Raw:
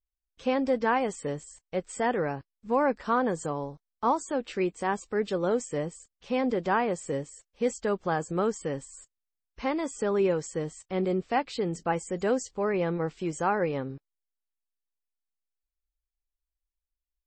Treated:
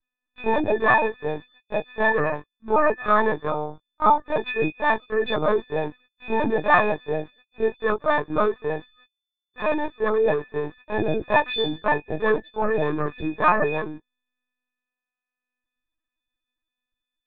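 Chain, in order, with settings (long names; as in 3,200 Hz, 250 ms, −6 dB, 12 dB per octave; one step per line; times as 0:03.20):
every partial snapped to a pitch grid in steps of 6 semitones
linear-prediction vocoder at 8 kHz pitch kept
level +4.5 dB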